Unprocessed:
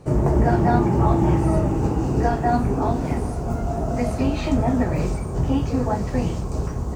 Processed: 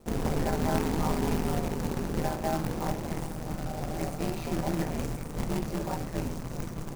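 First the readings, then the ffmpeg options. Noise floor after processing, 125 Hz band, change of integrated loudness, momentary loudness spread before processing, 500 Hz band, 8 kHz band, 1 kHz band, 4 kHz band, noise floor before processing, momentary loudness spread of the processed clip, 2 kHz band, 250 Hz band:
-38 dBFS, -12.0 dB, -10.0 dB, 8 LU, -9.0 dB, 0.0 dB, -10.0 dB, -1.0 dB, -28 dBFS, 7 LU, -5.5 dB, -10.0 dB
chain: -af "acrusher=bits=2:mode=log:mix=0:aa=0.000001,equalizer=f=3300:t=o:w=0.77:g=-4,aeval=exprs='val(0)*sin(2*PI*79*n/s)':c=same,bandreject=f=69.44:t=h:w=4,bandreject=f=138.88:t=h:w=4,bandreject=f=208.32:t=h:w=4,bandreject=f=277.76:t=h:w=4,bandreject=f=347.2:t=h:w=4,bandreject=f=416.64:t=h:w=4,bandreject=f=486.08:t=h:w=4,bandreject=f=555.52:t=h:w=4,bandreject=f=624.96:t=h:w=4,bandreject=f=694.4:t=h:w=4,bandreject=f=763.84:t=h:w=4,bandreject=f=833.28:t=h:w=4,bandreject=f=902.72:t=h:w=4,bandreject=f=972.16:t=h:w=4,bandreject=f=1041.6:t=h:w=4,bandreject=f=1111.04:t=h:w=4,bandreject=f=1180.48:t=h:w=4,bandreject=f=1249.92:t=h:w=4,bandreject=f=1319.36:t=h:w=4,bandreject=f=1388.8:t=h:w=4,bandreject=f=1458.24:t=h:w=4,bandreject=f=1527.68:t=h:w=4,bandreject=f=1597.12:t=h:w=4,bandreject=f=1666.56:t=h:w=4,bandreject=f=1736:t=h:w=4,bandreject=f=1805.44:t=h:w=4,bandreject=f=1874.88:t=h:w=4,bandreject=f=1944.32:t=h:w=4,bandreject=f=2013.76:t=h:w=4,bandreject=f=2083.2:t=h:w=4,bandreject=f=2152.64:t=h:w=4,bandreject=f=2222.08:t=h:w=4,bandreject=f=2291.52:t=h:w=4,bandreject=f=2360.96:t=h:w=4,bandreject=f=2430.4:t=h:w=4,bandreject=f=2499.84:t=h:w=4,bandreject=f=2569.28:t=h:w=4,bandreject=f=2638.72:t=h:w=4,volume=0.447"

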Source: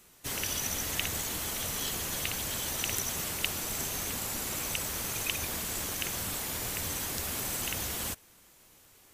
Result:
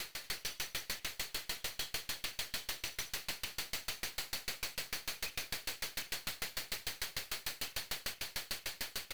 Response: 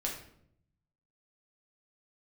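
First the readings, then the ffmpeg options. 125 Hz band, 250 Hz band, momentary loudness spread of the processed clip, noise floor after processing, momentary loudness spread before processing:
-14.5 dB, -14.5 dB, 2 LU, -60 dBFS, 2 LU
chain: -filter_complex "[0:a]equalizer=f=4400:w=5:g=10.5,bandreject=f=99.37:t=h:w=4,bandreject=f=198.74:t=h:w=4,bandreject=f=298.11:t=h:w=4,bandreject=f=397.48:t=h:w=4,bandreject=f=496.85:t=h:w=4,bandreject=f=596.22:t=h:w=4,bandreject=f=695.59:t=h:w=4,bandreject=f=794.96:t=h:w=4,bandreject=f=894.33:t=h:w=4,bandreject=f=993.7:t=h:w=4,bandreject=f=1093.07:t=h:w=4,bandreject=f=1192.44:t=h:w=4,bandreject=f=1291.81:t=h:w=4,bandreject=f=1391.18:t=h:w=4,bandreject=f=1490.55:t=h:w=4,bandreject=f=1589.92:t=h:w=4,bandreject=f=1689.29:t=h:w=4,bandreject=f=1788.66:t=h:w=4,bandreject=f=1888.03:t=h:w=4,bandreject=f=1987.4:t=h:w=4,bandreject=f=2086.77:t=h:w=4,bandreject=f=2186.14:t=h:w=4,bandreject=f=2285.51:t=h:w=4,bandreject=f=2384.88:t=h:w=4,bandreject=f=2484.25:t=h:w=4,bandreject=f=2583.62:t=h:w=4,bandreject=f=2682.99:t=h:w=4,bandreject=f=2782.36:t=h:w=4,bandreject=f=2881.73:t=h:w=4,bandreject=f=2981.1:t=h:w=4,bandreject=f=3080.47:t=h:w=4,bandreject=f=3179.84:t=h:w=4,bandreject=f=3279.21:t=h:w=4,bandreject=f=3378.58:t=h:w=4,bandreject=f=3477.95:t=h:w=4,bandreject=f=3577.32:t=h:w=4,asplit=2[s0][s1];[s1]aecho=0:1:457|914|1371|1828|2285|2742:0.237|0.128|0.0691|0.0373|0.0202|0.0109[s2];[s0][s2]amix=inputs=2:normalize=0,acompressor=threshold=0.00562:ratio=6,equalizer=f=250:t=o:w=1:g=-10,equalizer=f=1000:t=o:w=1:g=-9,equalizer=f=2000:t=o:w=1:g=4,equalizer=f=8000:t=o:w=1:g=-7,asplit=2[s3][s4];[s4]highpass=f=720:p=1,volume=20,asoftclip=type=tanh:threshold=0.0501[s5];[s3][s5]amix=inputs=2:normalize=0,lowpass=f=4300:p=1,volume=0.501,alimiter=level_in=3.55:limit=0.0631:level=0:latency=1:release=72,volume=0.282,aeval=exprs='clip(val(0),-1,0.00188)':c=same,aeval=exprs='val(0)*pow(10,-30*if(lt(mod(6.7*n/s,1),2*abs(6.7)/1000),1-mod(6.7*n/s,1)/(2*abs(6.7)/1000),(mod(6.7*n/s,1)-2*abs(6.7)/1000)/(1-2*abs(6.7)/1000))/20)':c=same,volume=3.55"

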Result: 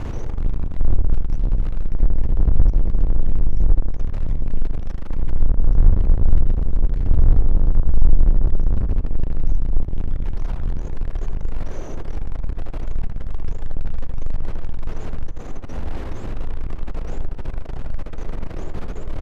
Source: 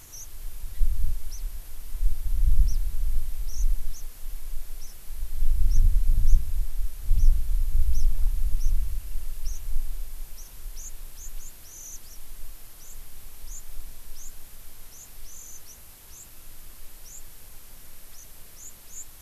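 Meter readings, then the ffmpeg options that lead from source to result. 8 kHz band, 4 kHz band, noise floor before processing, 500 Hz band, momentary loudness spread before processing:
under -10 dB, no reading, -46 dBFS, +22.5 dB, 19 LU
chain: -filter_complex "[0:a]aeval=exprs='val(0)+0.5*0.0794*sgn(val(0))':c=same,acrossover=split=640[s0][s1];[s1]alimiter=level_in=1.5:limit=0.0631:level=0:latency=1:release=320,volume=0.668[s2];[s0][s2]amix=inputs=2:normalize=0,asoftclip=type=tanh:threshold=0.211,adynamicsmooth=sensitivity=1.5:basefreq=1300,asplit=2[s3][s4];[s4]adelay=80,lowpass=f=1900:p=1,volume=0.562,asplit=2[s5][s6];[s6]adelay=80,lowpass=f=1900:p=1,volume=0.42,asplit=2[s7][s8];[s8]adelay=80,lowpass=f=1900:p=1,volume=0.42,asplit=2[s9][s10];[s10]adelay=80,lowpass=f=1900:p=1,volume=0.42,asplit=2[s11][s12];[s12]adelay=80,lowpass=f=1900:p=1,volume=0.42[s13];[s3][s5][s7][s9][s11][s13]amix=inputs=6:normalize=0,volume=2.11"

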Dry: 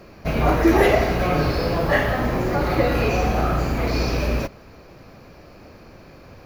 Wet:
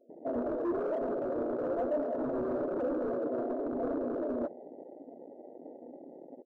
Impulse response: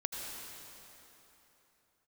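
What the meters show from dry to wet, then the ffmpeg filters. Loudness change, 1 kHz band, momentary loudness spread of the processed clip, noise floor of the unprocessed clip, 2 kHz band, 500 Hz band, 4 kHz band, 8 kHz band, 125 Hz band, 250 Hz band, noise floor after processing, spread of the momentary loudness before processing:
-13.0 dB, -17.0 dB, 17 LU, -46 dBFS, -26.5 dB, -9.5 dB, under -35 dB, under -35 dB, -30.0 dB, -11.0 dB, -52 dBFS, 7 LU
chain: -filter_complex "[0:a]acompressor=threshold=0.0891:ratio=4,asoftclip=type=tanh:threshold=0.0944,asplit=2[s0][s1];[s1]adelay=367.3,volume=0.126,highshelf=f=4000:g=-8.27[s2];[s0][s2]amix=inputs=2:normalize=0,afftfilt=real='re*between(b*sr/4096,220,690)':imag='im*between(b*sr/4096,220,690)':win_size=4096:overlap=0.75,acontrast=33,afreqshift=13,volume=18.8,asoftclip=hard,volume=0.0531,flanger=delay=3.3:depth=5.2:regen=65:speed=0.99:shape=sinusoidal,afwtdn=0.0141"

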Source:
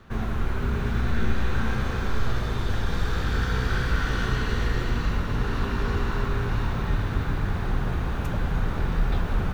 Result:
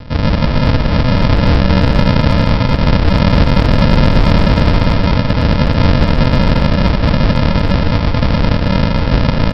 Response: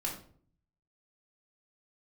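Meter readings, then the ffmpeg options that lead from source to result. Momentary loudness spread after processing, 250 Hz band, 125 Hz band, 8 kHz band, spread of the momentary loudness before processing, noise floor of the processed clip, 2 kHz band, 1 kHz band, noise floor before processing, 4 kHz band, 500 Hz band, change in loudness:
3 LU, +18.0 dB, +15.0 dB, no reading, 3 LU, -15 dBFS, +10.5 dB, +14.0 dB, -28 dBFS, +16.5 dB, +16.5 dB, +15.0 dB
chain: -filter_complex "[0:a]highpass=870,aresample=11025,acrusher=samples=29:mix=1:aa=0.000001,aresample=44100,asplit=2[s0][s1];[s1]adelay=220,highpass=300,lowpass=3400,asoftclip=type=hard:threshold=0.0299,volume=0.501[s2];[s0][s2]amix=inputs=2:normalize=0,alimiter=level_in=28.2:limit=0.891:release=50:level=0:latency=1,volume=0.891"

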